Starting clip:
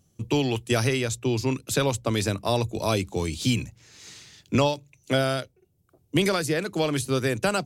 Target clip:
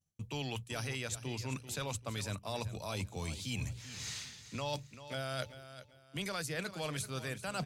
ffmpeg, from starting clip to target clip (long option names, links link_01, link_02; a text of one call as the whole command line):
ffmpeg -i in.wav -af "agate=range=-33dB:threshold=-51dB:ratio=3:detection=peak,equalizer=frequency=340:width_type=o:width=1.1:gain=-10.5,bandreject=frequency=60:width_type=h:width=6,bandreject=frequency=120:width_type=h:width=6,areverse,acompressor=threshold=-39dB:ratio=12,areverse,aecho=1:1:389|778|1167:0.224|0.0649|0.0188,volume=3.5dB" out.wav